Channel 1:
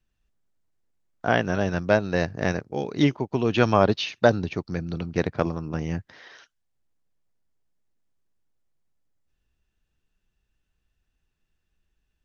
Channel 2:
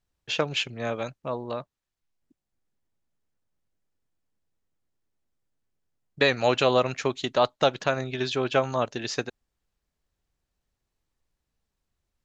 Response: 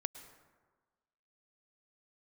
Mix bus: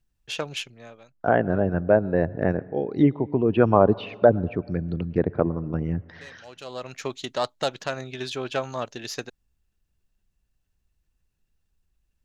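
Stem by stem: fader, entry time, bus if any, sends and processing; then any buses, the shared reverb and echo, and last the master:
−0.5 dB, 0.00 s, send −8 dB, spectral envelope exaggerated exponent 1.5; treble cut that deepens with the level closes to 1,600 Hz, closed at −22 dBFS
−4.5 dB, 0.00 s, no send, phase distortion by the signal itself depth 0.065 ms; high-shelf EQ 5,400 Hz +7.5 dB; automatic ducking −22 dB, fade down 0.70 s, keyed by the first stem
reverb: on, RT60 1.4 s, pre-delay 98 ms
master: no processing

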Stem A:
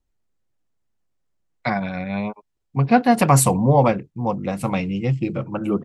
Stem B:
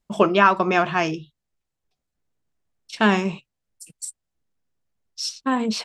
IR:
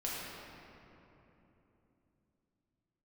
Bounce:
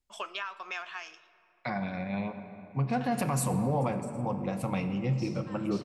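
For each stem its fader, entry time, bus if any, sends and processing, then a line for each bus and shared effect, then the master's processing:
−10.5 dB, 0.00 s, send −9 dB, no echo send, brickwall limiter −13 dBFS, peak gain reduction 9 dB
−5.5 dB, 0.00 s, send −21 dB, echo send −24 dB, Bessel high-pass filter 1,700 Hz, order 2; downward compressor 12 to 1, threshold −28 dBFS, peak gain reduction 13.5 dB; automatic ducking −16 dB, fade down 0.80 s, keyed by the first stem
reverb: on, RT60 3.3 s, pre-delay 6 ms
echo: single-tap delay 113 ms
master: no processing

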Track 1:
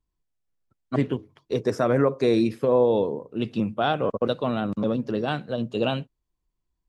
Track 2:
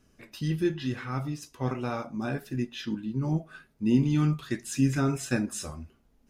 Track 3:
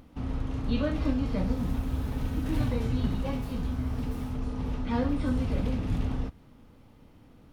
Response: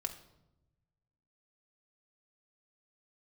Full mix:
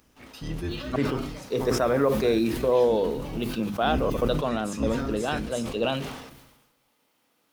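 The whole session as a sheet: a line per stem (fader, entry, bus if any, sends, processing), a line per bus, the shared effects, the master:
−1.5 dB, 0.00 s, send −19 dB, no processing
+0.5 dB, 0.00 s, send −13.5 dB, sub-octave generator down 2 octaves, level +4 dB; parametric band 89 Hz +6 dB; automatic ducking −11 dB, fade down 0.95 s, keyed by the first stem
−7.0 dB, 0.00 s, no send, spectral tilt +3 dB per octave; log-companded quantiser 6 bits; low-shelf EQ 150 Hz −11 dB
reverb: on, RT60 0.95 s, pre-delay 4 ms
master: low-shelf EQ 130 Hz −11.5 dB; mains-hum notches 50/100/150/200/250/300/350/400 Hz; level that may fall only so fast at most 52 dB per second

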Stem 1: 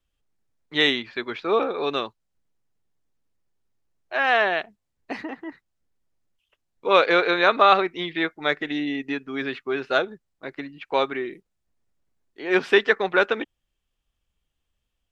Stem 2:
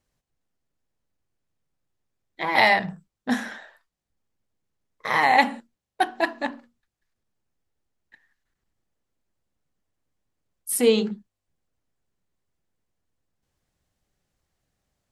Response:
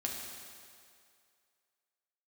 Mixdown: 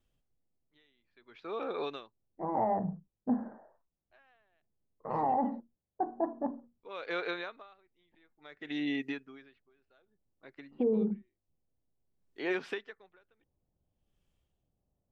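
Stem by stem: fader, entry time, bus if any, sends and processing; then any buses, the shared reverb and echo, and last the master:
−2.0 dB, 0.00 s, no send, downward compressor 4 to 1, threshold −27 dBFS, peak gain reduction 14 dB; tremolo with a sine in dB 0.56 Hz, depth 39 dB; automatic ducking −16 dB, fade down 0.70 s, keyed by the second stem
−2.0 dB, 0.00 s, no send, Bessel low-pass filter 600 Hz, order 6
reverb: not used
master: brickwall limiter −21.5 dBFS, peak gain reduction 10 dB

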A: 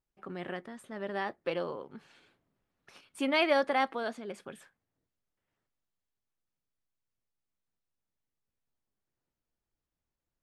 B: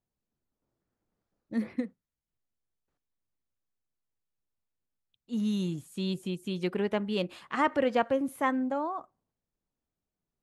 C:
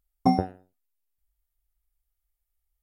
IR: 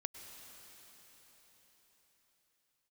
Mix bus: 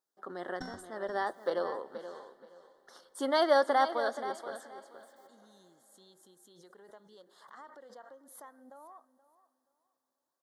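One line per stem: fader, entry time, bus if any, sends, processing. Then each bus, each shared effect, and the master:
+2.0 dB, 0.00 s, send −12.5 dB, echo send −10.5 dB, high-pass filter 400 Hz 12 dB per octave
−16.5 dB, 0.00 s, send −16.5 dB, echo send −16.5 dB, downward compressor 6 to 1, threshold −30 dBFS, peak gain reduction 9.5 dB; high-pass filter 540 Hz 12 dB per octave; background raised ahead of every attack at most 60 dB per second
−18.5 dB, 0.35 s, no send, echo send −14 dB, lower of the sound and its delayed copy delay 0.37 ms; downward compressor, threshold −21 dBFS, peak gain reduction 5.5 dB; flat-topped bell 3,600 Hz +13 dB 2.6 octaves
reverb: on, RT60 4.9 s, pre-delay 93 ms
echo: repeating echo 477 ms, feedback 21%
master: Butterworth band-reject 2,500 Hz, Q 1.4

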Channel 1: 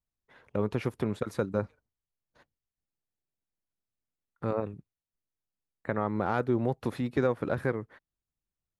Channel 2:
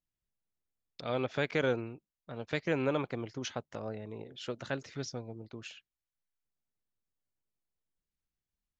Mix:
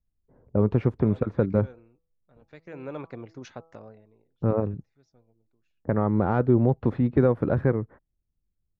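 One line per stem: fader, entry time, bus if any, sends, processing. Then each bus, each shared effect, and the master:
+3.0 dB, 0.00 s, no send, low-pass that shuts in the quiet parts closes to 480 Hz, open at −24 dBFS; spectral tilt −2.5 dB per octave; pitch vibrato 0.81 Hz 9.3 cents
0:03.73 −1.5 dB → 0:04.38 −13.5 dB, 0.00 s, no send, notch filter 3,100 Hz, Q 7; hum removal 163.7 Hz, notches 8; automatic ducking −15 dB, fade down 0.65 s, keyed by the first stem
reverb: not used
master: high-shelf EQ 3,000 Hz −10.5 dB

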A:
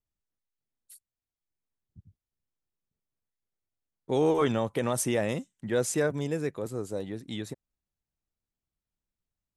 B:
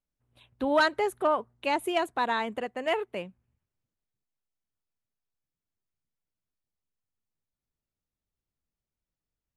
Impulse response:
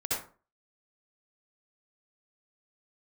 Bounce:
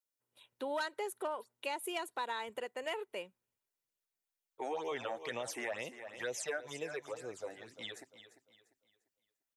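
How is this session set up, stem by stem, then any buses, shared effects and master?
+1.5 dB, 0.50 s, no send, echo send −13.5 dB, three-way crossover with the lows and the highs turned down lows −23 dB, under 530 Hz, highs −12 dB, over 6,500 Hz; all-pass phaser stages 8, 2.1 Hz, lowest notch 130–1,500 Hz
−7.0 dB, 0.00 s, no send, no echo send, high-pass filter 290 Hz 12 dB per octave; high-shelf EQ 4,600 Hz +11.5 dB; comb filter 2.1 ms, depth 34%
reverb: not used
echo: repeating echo 347 ms, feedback 33%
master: downward compressor 3 to 1, threshold −36 dBFS, peak gain reduction 10 dB

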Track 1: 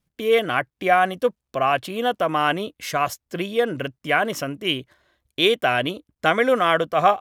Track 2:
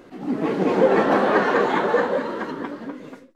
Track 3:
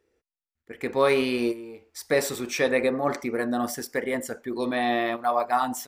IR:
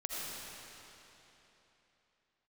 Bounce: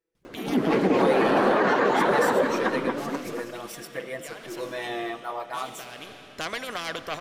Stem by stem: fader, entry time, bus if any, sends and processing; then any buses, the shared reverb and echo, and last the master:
−13.5 dB, 0.15 s, bus A, send −7.5 dB, high-shelf EQ 9,500 Hz −8.5 dB; soft clipping −10.5 dBFS, distortion −18 dB; every bin compressed towards the loudest bin 2 to 1; automatic ducking −17 dB, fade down 1.80 s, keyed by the third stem
−2.0 dB, 0.25 s, bus A, no send, no processing
−18.0 dB, 0.00 s, no bus, send −15.5 dB, comb filter 6.1 ms, depth 94%; automatic gain control gain up to 10 dB
bus A: 0.0 dB, harmonic and percussive parts rebalanced percussive +8 dB; brickwall limiter −12.5 dBFS, peak gain reduction 10 dB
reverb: on, RT60 3.4 s, pre-delay 40 ms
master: no processing

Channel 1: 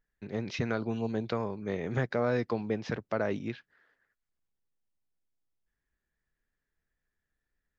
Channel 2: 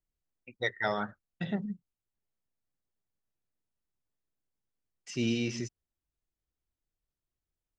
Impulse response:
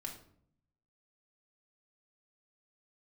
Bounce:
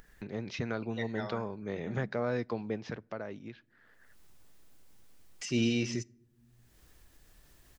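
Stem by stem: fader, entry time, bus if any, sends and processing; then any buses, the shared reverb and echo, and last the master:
0:02.76 −4 dB → 0:03.43 −13.5 dB, 0.00 s, send −22.5 dB, no processing
+0.5 dB, 0.35 s, send −16.5 dB, automatic ducking −19 dB, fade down 1.70 s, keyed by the first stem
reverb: on, RT60 0.60 s, pre-delay 3 ms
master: upward compression, threshold −36 dBFS

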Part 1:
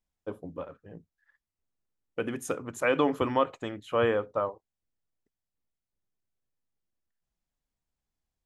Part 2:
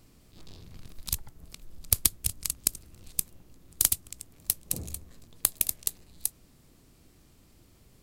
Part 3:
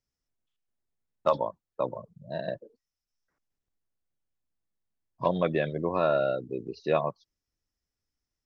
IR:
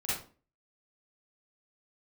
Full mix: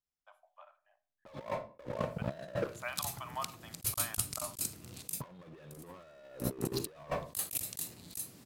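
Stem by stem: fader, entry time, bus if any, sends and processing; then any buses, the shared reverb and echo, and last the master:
−19.5 dB, 0.00 s, send −18 dB, Chebyshev high-pass filter 610 Hz, order 8
−3.5 dB, 1.90 s, send −18.5 dB, high-pass filter 100 Hz 24 dB per octave; automatic ducking −11 dB, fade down 0.20 s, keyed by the third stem
−12.0 dB, 0.00 s, send −16 dB, leveller curve on the samples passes 5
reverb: on, RT60 0.40 s, pre-delay 38 ms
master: compressor whose output falls as the input rises −38 dBFS, ratio −0.5

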